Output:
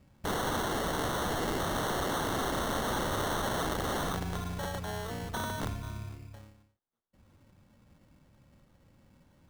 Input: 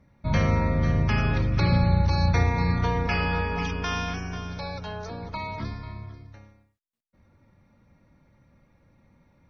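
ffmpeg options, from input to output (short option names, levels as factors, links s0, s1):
-filter_complex "[0:a]asplit=2[s0][s1];[s1]asoftclip=type=tanh:threshold=0.075,volume=0.473[s2];[s0][s2]amix=inputs=2:normalize=0,acrusher=samples=18:mix=1:aa=0.000001,aeval=exprs='(mod(12.6*val(0)+1,2)-1)/12.6':c=same,volume=0.562"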